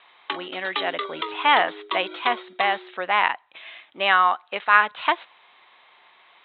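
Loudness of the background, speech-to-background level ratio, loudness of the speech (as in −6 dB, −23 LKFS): −32.0 LKFS, 10.0 dB, −22.0 LKFS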